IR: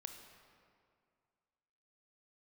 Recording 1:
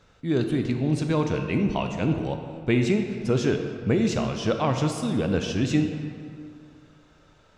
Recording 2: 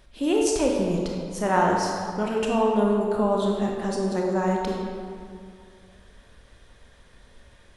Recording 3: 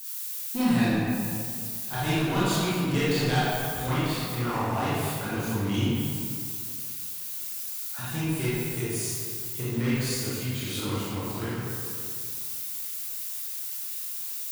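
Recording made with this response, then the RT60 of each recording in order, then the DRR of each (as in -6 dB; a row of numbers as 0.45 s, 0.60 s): 1; 2.2 s, 2.2 s, 2.2 s; 5.0 dB, -1.0 dB, -11.0 dB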